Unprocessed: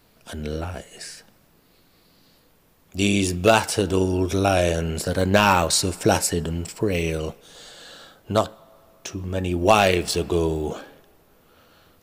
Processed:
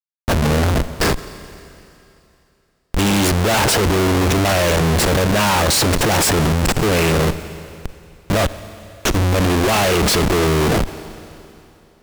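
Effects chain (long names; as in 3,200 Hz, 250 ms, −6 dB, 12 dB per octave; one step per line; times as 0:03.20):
comparator with hysteresis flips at −32.5 dBFS
four-comb reverb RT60 2.8 s, combs from 29 ms, DRR 15 dB
harmonic generator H 5 −19 dB, 6 −19 dB, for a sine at −16.5 dBFS
level +7 dB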